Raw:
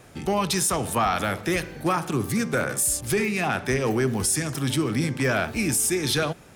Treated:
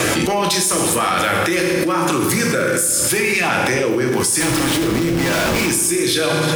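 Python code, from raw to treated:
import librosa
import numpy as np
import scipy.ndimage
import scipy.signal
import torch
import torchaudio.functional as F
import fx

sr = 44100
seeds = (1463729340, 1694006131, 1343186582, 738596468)

p1 = fx.highpass(x, sr, hz=500.0, slope=6)
p2 = fx.peak_eq(p1, sr, hz=730.0, db=-5.0, octaves=0.27)
p3 = fx.schmitt(p2, sr, flips_db=-40.0, at=(4.4, 5.69))
p4 = fx.rotary_switch(p3, sr, hz=5.5, then_hz=0.9, switch_at_s=0.97)
p5 = 10.0 ** (-16.5 / 20.0) * np.tanh(p4 / 10.0 ** (-16.5 / 20.0))
p6 = p5 + fx.echo_single(p5, sr, ms=360, db=-22.0, dry=0)
p7 = fx.rev_fdn(p6, sr, rt60_s=0.99, lf_ratio=1.45, hf_ratio=0.8, size_ms=18.0, drr_db=2.0)
p8 = fx.env_flatten(p7, sr, amount_pct=100)
y = F.gain(torch.from_numpy(p8), 5.0).numpy()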